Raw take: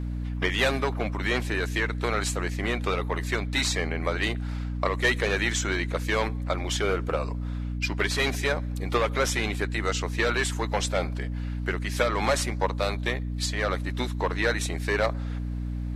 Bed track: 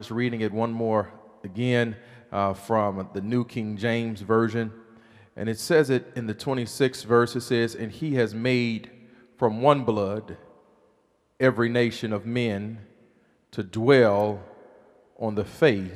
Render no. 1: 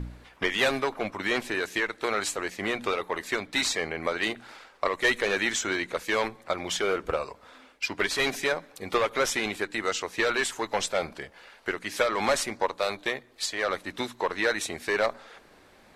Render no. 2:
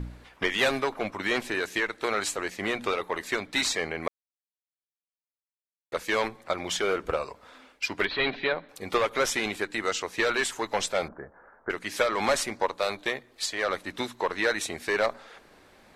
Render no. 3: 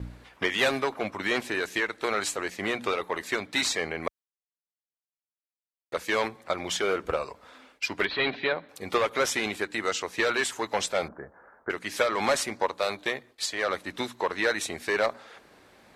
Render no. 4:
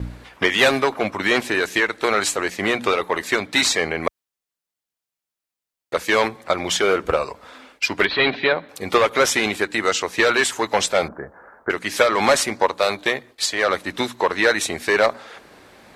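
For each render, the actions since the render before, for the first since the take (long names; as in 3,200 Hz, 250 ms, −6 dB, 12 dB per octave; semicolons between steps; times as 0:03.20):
hum removal 60 Hz, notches 5
0:04.08–0:05.92: silence; 0:08.05–0:08.69: Chebyshev low-pass filter 4,100 Hz, order 5; 0:11.08–0:11.70: Butterworth low-pass 1,600 Hz 48 dB per octave
high-pass filter 51 Hz; noise gate with hold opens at −47 dBFS
level +8.5 dB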